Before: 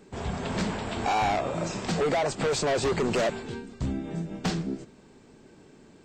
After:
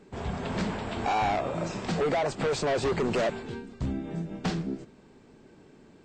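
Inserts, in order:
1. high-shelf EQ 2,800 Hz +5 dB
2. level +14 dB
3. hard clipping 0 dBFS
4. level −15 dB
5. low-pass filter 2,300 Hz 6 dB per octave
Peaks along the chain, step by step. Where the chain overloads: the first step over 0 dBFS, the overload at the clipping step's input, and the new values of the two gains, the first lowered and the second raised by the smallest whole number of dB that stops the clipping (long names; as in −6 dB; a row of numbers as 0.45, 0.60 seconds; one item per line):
−17.0, −3.0, −3.0, −18.0, −22.5 dBFS
no step passes full scale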